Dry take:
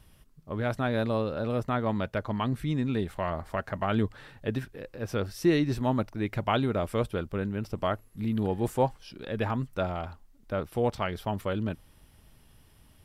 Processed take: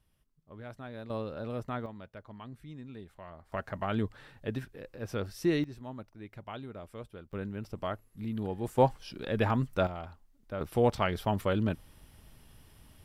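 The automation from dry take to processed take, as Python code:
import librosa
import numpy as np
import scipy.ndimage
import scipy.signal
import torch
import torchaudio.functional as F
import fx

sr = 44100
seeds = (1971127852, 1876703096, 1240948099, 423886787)

y = fx.gain(x, sr, db=fx.steps((0.0, -15.5), (1.1, -7.5), (1.86, -17.0), (3.52, -4.5), (5.64, -16.0), (7.33, -6.5), (8.78, 1.5), (9.87, -6.5), (10.61, 1.5)))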